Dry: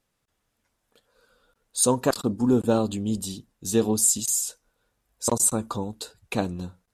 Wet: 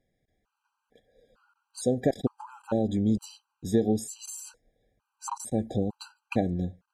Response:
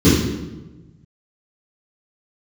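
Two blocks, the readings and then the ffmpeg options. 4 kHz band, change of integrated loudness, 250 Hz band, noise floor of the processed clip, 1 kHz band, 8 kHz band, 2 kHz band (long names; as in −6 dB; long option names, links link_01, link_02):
−11.0 dB, −5.5 dB, −2.5 dB, −83 dBFS, −6.0 dB, −17.0 dB, −6.0 dB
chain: -af "acompressor=threshold=-23dB:ratio=6,lowpass=frequency=1600:poles=1,afftfilt=real='re*gt(sin(2*PI*1.1*pts/sr)*(1-2*mod(floor(b*sr/1024/800),2)),0)':imag='im*gt(sin(2*PI*1.1*pts/sr)*(1-2*mod(floor(b*sr/1024/800),2)),0)':win_size=1024:overlap=0.75,volume=4dB"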